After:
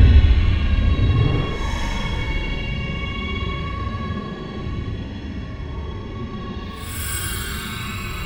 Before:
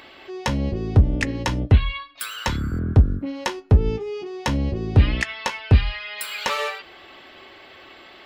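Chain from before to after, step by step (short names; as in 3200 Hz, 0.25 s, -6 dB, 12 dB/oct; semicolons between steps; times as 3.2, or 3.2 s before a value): regenerating reverse delay 0.699 s, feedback 66%, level -6.5 dB; digital reverb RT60 3.8 s, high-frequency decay 0.8×, pre-delay 40 ms, DRR 10 dB; Paulstretch 15×, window 0.05 s, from 1.74; gain -1 dB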